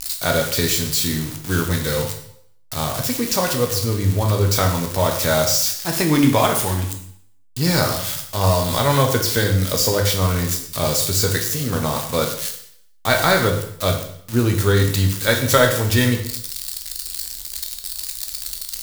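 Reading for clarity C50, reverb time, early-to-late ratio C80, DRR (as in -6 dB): 7.5 dB, 0.65 s, 11.0 dB, 3.0 dB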